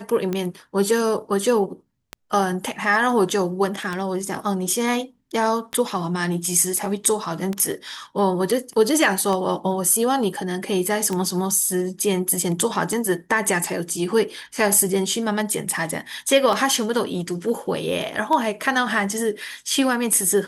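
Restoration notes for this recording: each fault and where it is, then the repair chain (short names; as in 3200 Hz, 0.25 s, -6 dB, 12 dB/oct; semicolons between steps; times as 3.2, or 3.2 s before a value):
tick 33 1/3 rpm -12 dBFS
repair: de-click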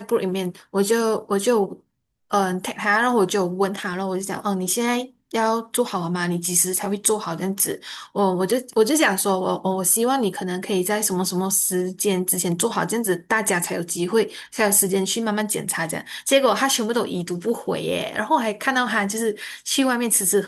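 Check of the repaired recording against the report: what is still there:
none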